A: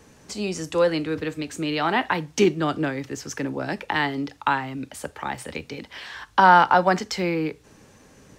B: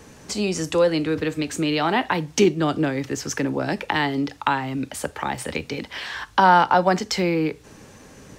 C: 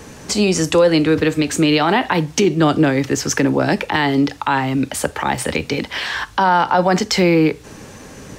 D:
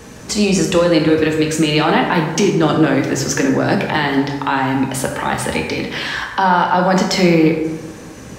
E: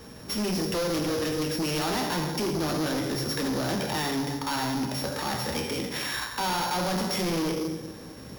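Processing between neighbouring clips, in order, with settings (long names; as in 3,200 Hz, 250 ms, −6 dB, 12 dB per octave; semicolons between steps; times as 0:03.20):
dynamic equaliser 1,500 Hz, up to −4 dB, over −33 dBFS, Q 0.88; in parallel at 0 dB: downward compressor, threshold −28 dBFS, peak gain reduction 15 dB
brickwall limiter −14 dBFS, peak gain reduction 10 dB; level +8.5 dB
dense smooth reverb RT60 1.3 s, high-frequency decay 0.5×, DRR 1.5 dB; level −1 dB
samples sorted by size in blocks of 8 samples; hard clipping −17 dBFS, distortion −7 dB; level −8.5 dB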